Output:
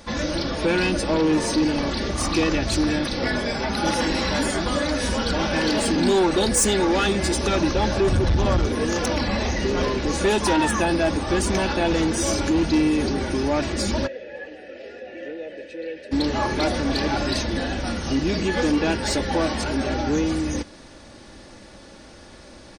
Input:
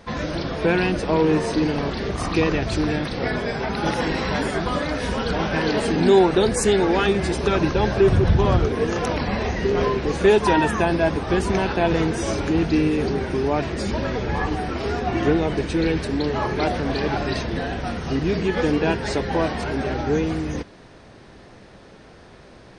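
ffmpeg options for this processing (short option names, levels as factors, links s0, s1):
-filter_complex "[0:a]bass=f=250:g=1,treble=f=4000:g=10,aecho=1:1:3.5:0.47,asoftclip=type=tanh:threshold=0.211,asplit=3[s0][s1][s2];[s0]afade=t=out:st=14.06:d=0.02[s3];[s1]asplit=3[s4][s5][s6];[s4]bandpass=f=530:t=q:w=8,volume=1[s7];[s5]bandpass=f=1840:t=q:w=8,volume=0.501[s8];[s6]bandpass=f=2480:t=q:w=8,volume=0.355[s9];[s7][s8][s9]amix=inputs=3:normalize=0,afade=t=in:st=14.06:d=0.02,afade=t=out:st=16.11:d=0.02[s10];[s2]afade=t=in:st=16.11:d=0.02[s11];[s3][s10][s11]amix=inputs=3:normalize=0"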